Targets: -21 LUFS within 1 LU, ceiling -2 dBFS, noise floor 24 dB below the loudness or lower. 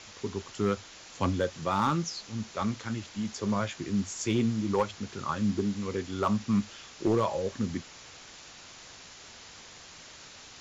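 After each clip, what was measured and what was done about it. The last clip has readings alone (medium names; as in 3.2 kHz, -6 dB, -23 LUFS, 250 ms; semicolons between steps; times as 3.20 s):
clipped samples 0.2%; clipping level -18.5 dBFS; noise floor -50 dBFS; noise floor target -55 dBFS; loudness -31.0 LUFS; peak level -18.5 dBFS; loudness target -21.0 LUFS
-> clip repair -18.5 dBFS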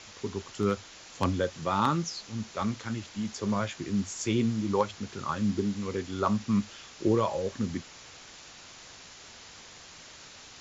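clipped samples 0.0%; noise floor -50 dBFS; noise floor target -55 dBFS
-> noise print and reduce 6 dB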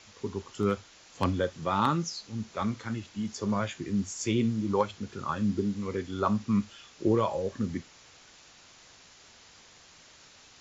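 noise floor -56 dBFS; loudness -30.5 LUFS; peak level -9.5 dBFS; loudness target -21.0 LUFS
-> trim +9.5 dB; peak limiter -2 dBFS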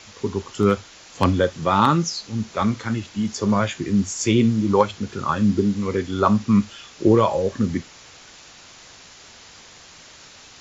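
loudness -21.0 LUFS; peak level -2.0 dBFS; noise floor -46 dBFS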